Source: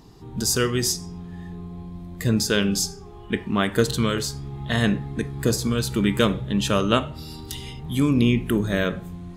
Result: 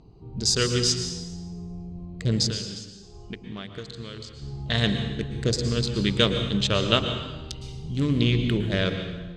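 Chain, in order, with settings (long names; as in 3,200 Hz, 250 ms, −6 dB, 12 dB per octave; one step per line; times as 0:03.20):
adaptive Wiener filter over 25 samples
graphic EQ with 10 bands 250 Hz −6 dB, 1,000 Hz −5 dB, 4,000 Hz +10 dB, 8,000 Hz +8 dB
0:02.48–0:04.42: downward compressor 12 to 1, threshold −33 dBFS, peak gain reduction 20.5 dB
high-frequency loss of the air 120 metres
dense smooth reverb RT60 1.1 s, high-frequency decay 0.95×, pre-delay 100 ms, DRR 7 dB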